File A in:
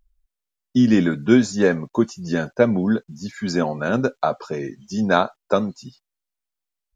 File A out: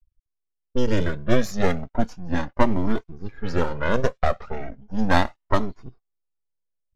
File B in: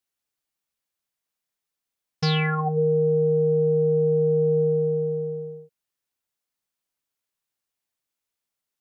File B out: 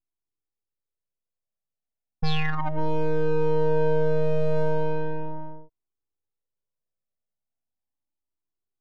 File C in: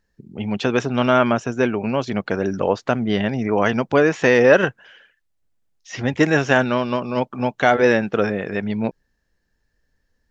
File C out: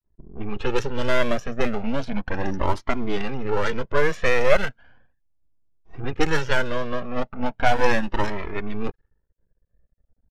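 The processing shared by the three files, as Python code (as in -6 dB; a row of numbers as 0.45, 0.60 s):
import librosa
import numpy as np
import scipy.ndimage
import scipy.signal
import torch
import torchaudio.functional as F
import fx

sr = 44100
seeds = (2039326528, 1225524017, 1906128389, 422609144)

p1 = np.maximum(x, 0.0)
p2 = fx.low_shelf(p1, sr, hz=420.0, db=2.5)
p3 = fx.rider(p2, sr, range_db=4, speed_s=2.0)
p4 = p2 + (p3 * 10.0 ** (2.5 / 20.0))
p5 = fx.env_lowpass(p4, sr, base_hz=630.0, full_db=-7.5)
p6 = fx.comb_cascade(p5, sr, direction='rising', hz=0.36)
y = p6 * 10.0 ** (-3.0 / 20.0)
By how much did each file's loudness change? -5.0, -4.0, -6.0 LU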